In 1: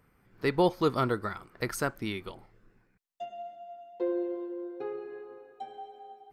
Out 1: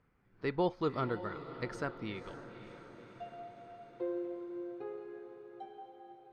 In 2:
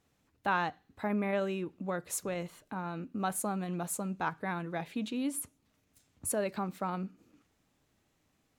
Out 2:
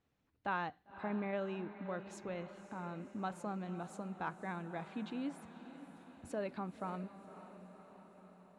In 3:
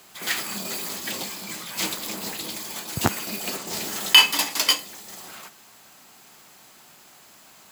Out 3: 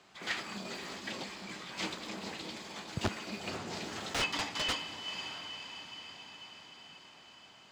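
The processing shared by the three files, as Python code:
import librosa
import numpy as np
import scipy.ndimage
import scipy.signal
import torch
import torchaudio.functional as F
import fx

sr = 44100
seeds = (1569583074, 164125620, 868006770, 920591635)

y = fx.echo_diffused(x, sr, ms=539, feedback_pct=63, wet_db=-12.5)
y = (np.mod(10.0 ** (13.0 / 20.0) * y + 1.0, 2.0) - 1.0) / 10.0 ** (13.0 / 20.0)
y = fx.air_absorb(y, sr, metres=130.0)
y = y * librosa.db_to_amplitude(-6.5)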